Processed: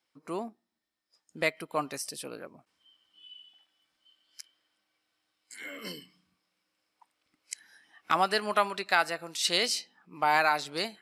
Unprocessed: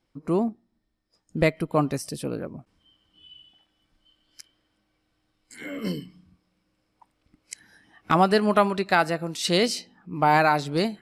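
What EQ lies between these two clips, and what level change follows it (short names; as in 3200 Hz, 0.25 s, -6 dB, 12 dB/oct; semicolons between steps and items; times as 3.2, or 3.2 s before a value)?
HPF 1400 Hz 6 dB/oct; 0.0 dB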